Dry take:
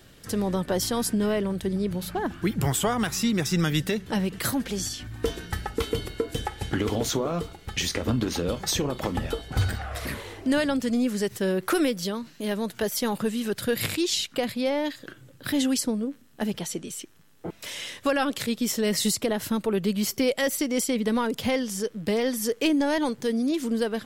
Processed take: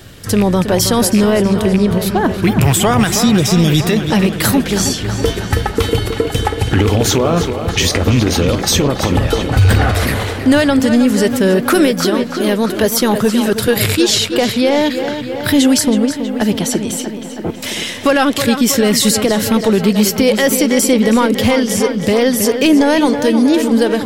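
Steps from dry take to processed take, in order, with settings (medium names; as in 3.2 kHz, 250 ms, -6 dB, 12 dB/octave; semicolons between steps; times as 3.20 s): rattle on loud lows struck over -24 dBFS, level -25 dBFS; 3.18–3.77 s: spectral replace 670–3000 Hz; hard clipper -15 dBFS, distortion -33 dB; peaking EQ 97 Hz +8 dB 0.52 oct; tape echo 322 ms, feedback 76%, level -8.5 dB, low-pass 4.4 kHz; loudness maximiser +15.5 dB; 9.37–10.33 s: decay stretcher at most 23 dB/s; trim -2 dB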